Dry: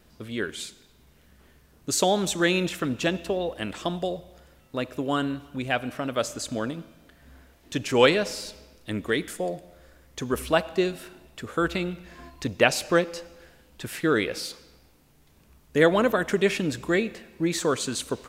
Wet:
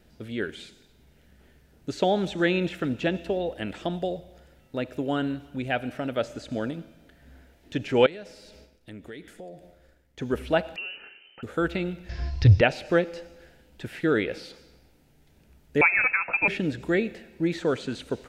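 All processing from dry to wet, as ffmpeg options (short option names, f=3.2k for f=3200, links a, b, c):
-filter_complex "[0:a]asettb=1/sr,asplit=3[a][b][c];[a]atrim=end=8.064[d];[b]atrim=start=8.06:end=10.19,asetpts=PTS-STARTPTS,afade=t=in:d=0.004:c=qsin,afade=t=out:st=2.126:d=0.004:c=qsin,agate=range=-33dB:threshold=-48dB:ratio=3:release=100:detection=peak,acompressor=threshold=-44dB:ratio=2.5:attack=3.2:release=140:knee=1:detection=peak[e];[c]atrim=start=10.186[f];[d][e]acrossfade=d=0.004:c1=hsin:c2=qsin[g];[g][f]acrossfade=d=0.004:c1=qsin:c2=hsin,asettb=1/sr,asplit=3[h][i][j];[h]atrim=end=10.764[k];[i]atrim=start=10.76:end=11.43,asetpts=PTS-STARTPTS,afade=t=in:d=0.004:c=qsin,afade=t=out:st=0.666:d=0.004:c=qsin,acompressor=threshold=-29dB:ratio=10:attack=3.2:release=140:knee=1:detection=peak,lowpass=f=2.6k:t=q:w=0.5098,lowpass=f=2.6k:t=q:w=0.6013,lowpass=f=2.6k:t=q:w=0.9,lowpass=f=2.6k:t=q:w=2.563,afreqshift=-3100[l];[j]atrim=start=11.426[m];[k][l]acrossfade=d=0.004:c1=hsin:c2=qsin[n];[n][m]acrossfade=d=0.004:c1=qsin:c2=hsin,asettb=1/sr,asplit=3[o][p][q];[o]atrim=end=12.094[r];[p]atrim=start=12.09:end=12.61,asetpts=PTS-STARTPTS,afade=t=in:d=0.004:c=qsin,afade=t=out:st=0.516:d=0.004:c=qsin,lowpass=f=5.3k:t=q:w=6,lowshelf=f=150:t=q:w=3:g=13,acontrast=28[s];[q]atrim=start=12.606[t];[r][s]acrossfade=d=0.004:c1=hsin:c2=qsin[u];[u][t]acrossfade=d=0.004:c1=qsin:c2=hsin,asettb=1/sr,asplit=3[v][w][x];[v]atrim=end=15.814[y];[w]atrim=start=15.81:end=16.48,asetpts=PTS-STARTPTS,afade=t=in:d=0.004:c=qsin,afade=t=out:st=0.666:d=0.004:c=qsin,highshelf=f=2.1k:g=8,lowpass=f=2.4k:t=q:w=0.5098,lowpass=f=2.4k:t=q:w=0.6013,lowpass=f=2.4k:t=q:w=0.9,lowpass=f=2.4k:t=q:w=2.563,afreqshift=-2800[z];[x]atrim=start=16.476[aa];[y][z]acrossfade=d=0.004:c1=hsin:c2=qsin[ab];[ab][aa]acrossfade=d=0.004:c1=qsin:c2=hsin,equalizer=f=1.1k:t=o:w=0.25:g=-14,acrossover=split=3900[ac][ad];[ad]acompressor=threshold=-49dB:ratio=4:attack=1:release=60[ae];[ac][ae]amix=inputs=2:normalize=0,highshelf=f=4.2k:g=-6.5"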